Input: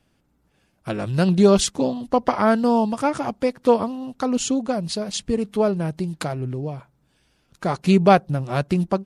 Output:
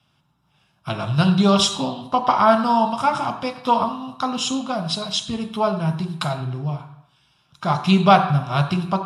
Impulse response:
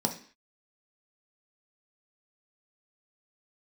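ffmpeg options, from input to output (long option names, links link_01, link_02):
-filter_complex "[0:a]lowshelf=frequency=710:width_type=q:width=3:gain=-11[link_01];[1:a]atrim=start_sample=2205,asetrate=29988,aresample=44100[link_02];[link_01][link_02]afir=irnorm=-1:irlink=0,volume=-5dB"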